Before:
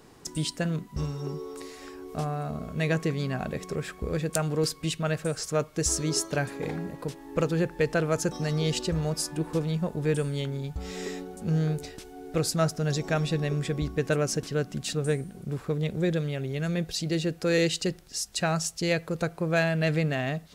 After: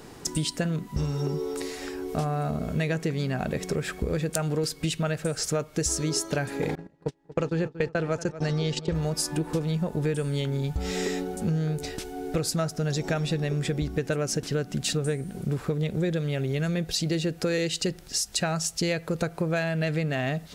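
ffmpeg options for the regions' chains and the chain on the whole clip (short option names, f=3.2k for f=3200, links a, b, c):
-filter_complex "[0:a]asettb=1/sr,asplit=3[a][b][c];[a]atrim=end=6.754[d];[b]atrim=start=6.75:end=8.95,asetpts=PTS-STARTPTS,afade=t=in:d=0.004:c=qsin,afade=t=out:st=2.196:d=0.004:c=qsin,agate=range=-31dB:threshold=-31dB:ratio=16:release=100:detection=peak,lowpass=6.7k,asplit=2[e][f];[f]adelay=233,lowpass=f=2.8k:p=1,volume=-17.5dB,asplit=2[g][h];[h]adelay=233,lowpass=f=2.8k:p=1,volume=0.42,asplit=2[i][j];[j]adelay=233,lowpass=f=2.8k:p=1,volume=0.42[k];[e][g][i][k]amix=inputs=4:normalize=0,atrim=end_sample=97020[l];[c]atrim=start=8.946[m];[d][l]acrossfade=d=0.004:c1=hsin:c2=qsin[n];[n][m]acrossfade=d=0.004:c1=qsin:c2=hsin,bandreject=f=1.1k:w=19,acompressor=threshold=-32dB:ratio=6,volume=8dB"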